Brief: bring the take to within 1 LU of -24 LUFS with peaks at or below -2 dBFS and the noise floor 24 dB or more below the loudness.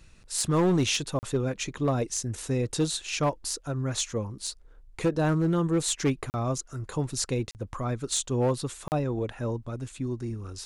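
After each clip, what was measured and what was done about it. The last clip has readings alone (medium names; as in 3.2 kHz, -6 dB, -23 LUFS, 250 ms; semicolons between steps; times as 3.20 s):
clipped samples 0.9%; clipping level -18.5 dBFS; dropouts 4; longest dropout 39 ms; loudness -29.0 LUFS; peak level -18.5 dBFS; loudness target -24.0 LUFS
-> clip repair -18.5 dBFS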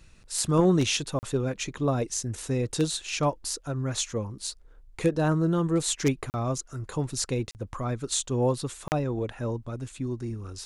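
clipped samples 0.0%; dropouts 4; longest dropout 39 ms
-> interpolate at 1.19/6.30/7.51/8.88 s, 39 ms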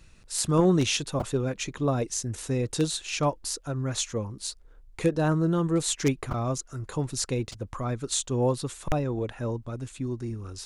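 dropouts 0; loudness -28.5 LUFS; peak level -9.5 dBFS; loudness target -24.0 LUFS
-> trim +4.5 dB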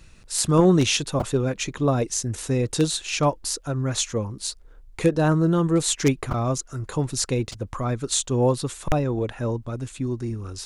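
loudness -24.0 LUFS; peak level -5.0 dBFS; noise floor -49 dBFS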